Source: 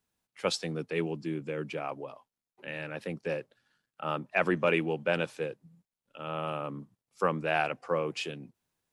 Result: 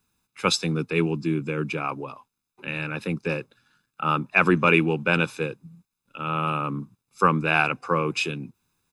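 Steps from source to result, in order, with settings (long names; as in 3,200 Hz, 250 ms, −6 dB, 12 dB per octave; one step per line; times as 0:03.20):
comb filter 0.8 ms, depth 64%
level +7.5 dB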